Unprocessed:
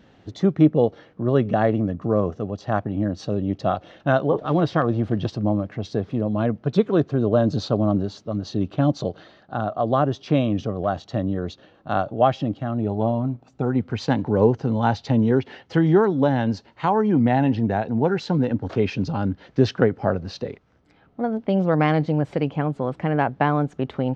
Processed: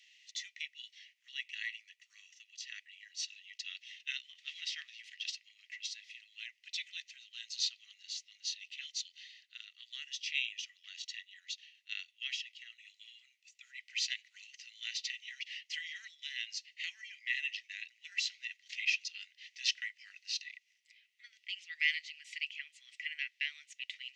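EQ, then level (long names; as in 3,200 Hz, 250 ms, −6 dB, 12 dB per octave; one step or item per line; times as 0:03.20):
Chebyshev high-pass with heavy ripple 1,900 Hz, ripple 6 dB
parametric band 4,700 Hz +3 dB 2.3 octaves
+3.5 dB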